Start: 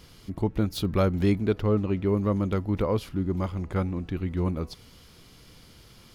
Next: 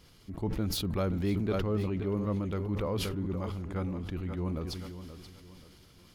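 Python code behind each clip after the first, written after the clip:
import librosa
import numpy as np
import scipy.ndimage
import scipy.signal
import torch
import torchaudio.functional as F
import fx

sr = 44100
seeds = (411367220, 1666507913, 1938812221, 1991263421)

y = fx.echo_feedback(x, sr, ms=528, feedback_pct=40, wet_db=-12.0)
y = fx.sustainer(y, sr, db_per_s=25.0)
y = y * 10.0 ** (-8.0 / 20.0)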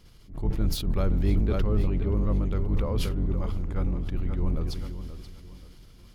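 y = fx.octave_divider(x, sr, octaves=2, level_db=3.0)
y = fx.low_shelf(y, sr, hz=94.0, db=6.5)
y = fx.attack_slew(y, sr, db_per_s=160.0)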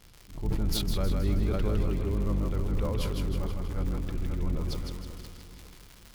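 y = fx.dmg_crackle(x, sr, seeds[0], per_s=110.0, level_db=-33.0)
y = fx.echo_thinned(y, sr, ms=159, feedback_pct=54, hz=360.0, wet_db=-3.5)
y = fx.sustainer(y, sr, db_per_s=25.0)
y = y * 10.0 ** (-4.0 / 20.0)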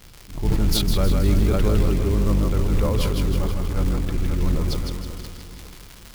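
y = fx.quant_companded(x, sr, bits=6)
y = y * 10.0 ** (8.5 / 20.0)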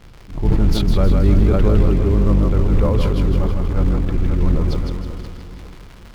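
y = fx.lowpass(x, sr, hz=1500.0, slope=6)
y = y * 10.0 ** (5.0 / 20.0)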